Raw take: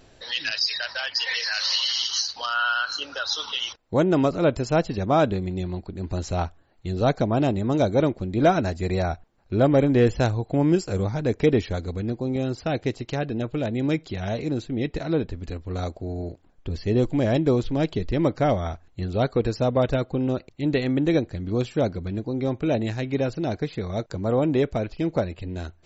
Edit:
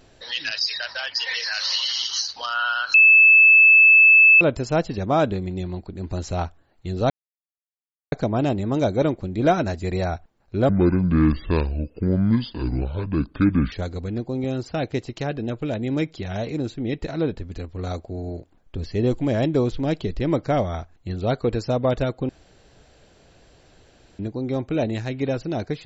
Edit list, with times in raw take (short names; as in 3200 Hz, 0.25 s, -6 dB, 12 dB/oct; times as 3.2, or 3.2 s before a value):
2.94–4.41 bleep 2620 Hz -8.5 dBFS
7.1 insert silence 1.02 s
9.67–11.64 speed 65%
20.21–22.11 room tone